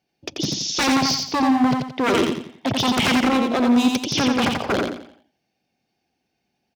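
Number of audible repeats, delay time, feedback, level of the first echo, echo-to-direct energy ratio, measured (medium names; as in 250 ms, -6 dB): 4, 87 ms, 35%, -3.5 dB, -3.0 dB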